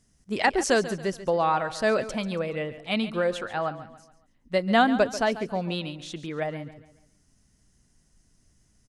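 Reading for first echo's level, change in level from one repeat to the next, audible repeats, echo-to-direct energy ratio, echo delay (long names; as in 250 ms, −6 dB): −14.0 dB, −8.0 dB, 3, −13.5 dB, 140 ms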